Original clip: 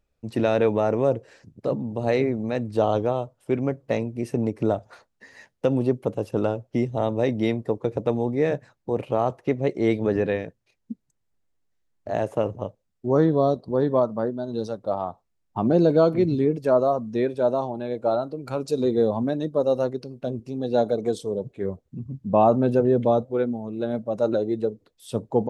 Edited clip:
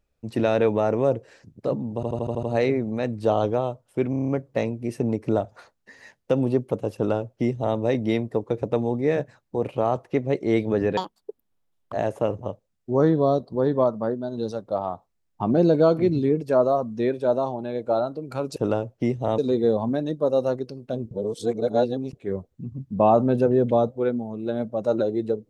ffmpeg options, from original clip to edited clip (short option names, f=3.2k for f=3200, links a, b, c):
-filter_complex "[0:a]asplit=19[a][b][c][d][e][f][g][h][i][j][k][l][m][n][o][p][q][r][s];[a]atrim=end=2.032[t];[b]atrim=start=1.948:end=2.032[u];[c]atrim=start=1.948:end=2.032[v];[d]atrim=start=1.948:end=2.032[w];[e]atrim=start=1.948:end=2.032[x];[f]atrim=start=1.948:end=2.032[y];[g]atrim=start=1.948:end=3.652[z];[h]atrim=start=3.618:end=3.652[aa];[i]atrim=start=3.618:end=3.652[ab];[j]atrim=start=3.618:end=3.652[ac];[k]atrim=start=3.618:end=3.652[ad];[l]atrim=start=3.618:end=3.652[ae];[m]atrim=start=3.618:end=10.314[af];[n]atrim=start=10.31:end=12.08,asetpts=PTS-STARTPTS,asetrate=82026,aresample=44100,atrim=end_sample=41966,asetpts=PTS-STARTPTS[ag];[o]atrim=start=12.076:end=18.722[ah];[p]atrim=start=6.288:end=7.112[ai];[q]atrim=start=18.718:end=20.452[aj];[r]atrim=start=20.448:end=21.472,asetpts=PTS-STARTPTS,areverse[ak];[s]atrim=start=21.468[al];[t][u]acrossfade=d=0.004:c1=hsin:c2=hsin[am];[am][v]acrossfade=d=0.004:c1=hsin:c2=hsin[an];[an][w]acrossfade=d=0.004:c1=hsin:c2=hsin[ao];[ao][x]acrossfade=d=0.004:c1=hsin:c2=hsin[ap];[ap][y]acrossfade=d=0.004:c1=hsin:c2=hsin[aq];[aq][z]acrossfade=d=0.004:c1=hsin:c2=hsin[ar];[ar][aa]acrossfade=d=0.004:c1=hsin:c2=hsin[as];[as][ab]acrossfade=d=0.004:c1=hsin:c2=hsin[at];[at][ac]acrossfade=d=0.004:c1=hsin:c2=hsin[au];[au][ad]acrossfade=d=0.004:c1=hsin:c2=hsin[av];[av][ae]acrossfade=d=0.004:c1=hsin:c2=hsin[aw];[aw][af]acrossfade=d=0.004:c1=hsin:c2=hsin[ax];[ax][ag]acrossfade=d=0.004:c1=hsin:c2=hsin[ay];[ay][ah]acrossfade=d=0.004:c1=hsin:c2=hsin[az];[az][ai]acrossfade=d=0.004:c1=hsin:c2=hsin[ba];[ba][aj]acrossfade=d=0.004:c1=hsin:c2=hsin[bb];[bb][ak]acrossfade=d=0.004:c1=hsin:c2=hsin[bc];[bc][al]acrossfade=d=0.004:c1=hsin:c2=hsin"